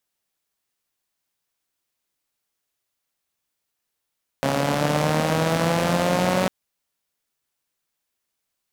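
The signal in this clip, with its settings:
pulse-train model of a four-cylinder engine, changing speed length 2.05 s, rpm 4,100, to 5,600, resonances 170/250/530 Hz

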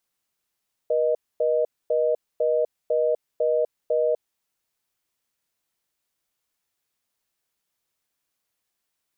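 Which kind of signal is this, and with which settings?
call progress tone reorder tone, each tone −21.5 dBFS 3.37 s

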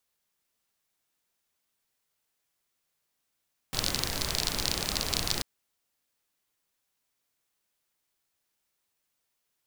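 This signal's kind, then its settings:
rain-like ticks over hiss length 1.69 s, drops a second 35, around 4,400 Hz, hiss 0 dB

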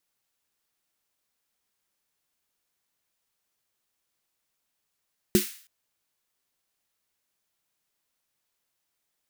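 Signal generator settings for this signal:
synth snare length 0.32 s, tones 210 Hz, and 360 Hz, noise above 1,600 Hz, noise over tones −9.5 dB, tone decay 0.14 s, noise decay 0.50 s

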